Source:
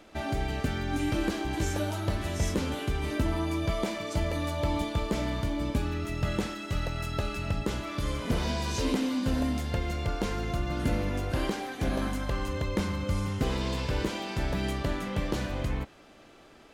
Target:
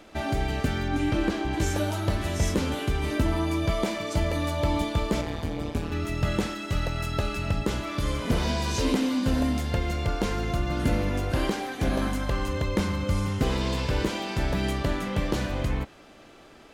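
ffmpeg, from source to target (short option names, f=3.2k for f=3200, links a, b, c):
-filter_complex "[0:a]asettb=1/sr,asplit=3[a][b][c];[a]atrim=end=0.884[d];[b]atrim=start=0.88:end=1.6,asetpts=PTS-STARTPTS,afade=t=in:d=0.004:c=qsin,afade=t=out:st=0.716:d=0.004:c=qsin,highshelf=f=6.5k:g=-11[e];[c]atrim=start=1.596[f];[d][e]acrossfade=d=0.004:c1=hsin:c2=qsin[g];[g][f]acrossfade=d=0.004:c1=qsin:c2=hsin,asettb=1/sr,asplit=3[h][i][j];[h]atrim=end=5.214[k];[i]atrim=start=5.21:end=5.92,asetpts=PTS-STARTPTS,afade=t=in:d=0.004:c=qsin,afade=t=out:st=0.706:d=0.004:c=qsin,tremolo=f=160:d=1[l];[j]atrim=start=5.916[m];[k][l]acrossfade=d=0.004:c1=hsin:c2=qsin[n];[n][m]acrossfade=d=0.004:c1=qsin:c2=hsin,volume=3.5dB"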